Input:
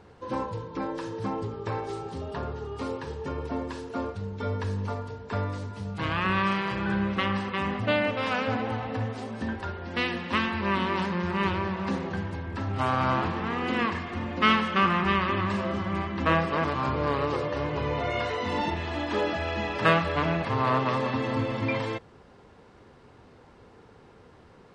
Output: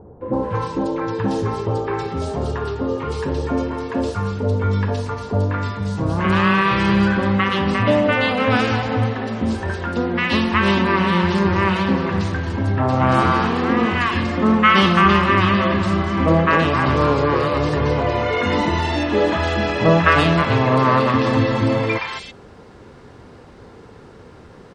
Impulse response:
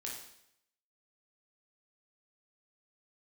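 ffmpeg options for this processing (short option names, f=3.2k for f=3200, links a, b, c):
-filter_complex "[0:a]acrossover=split=860|2700[a][b][c];[b]adelay=210[d];[c]adelay=330[e];[a][d][e]amix=inputs=3:normalize=0,acontrast=32,volume=6dB"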